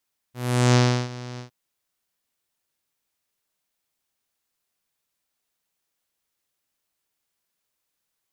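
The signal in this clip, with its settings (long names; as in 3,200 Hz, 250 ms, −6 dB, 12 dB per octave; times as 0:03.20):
subtractive voice saw B2 12 dB per octave, low-pass 5,600 Hz, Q 2.2, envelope 1.5 octaves, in 0.44 s, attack 402 ms, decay 0.34 s, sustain −19.5 dB, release 0.11 s, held 1.05 s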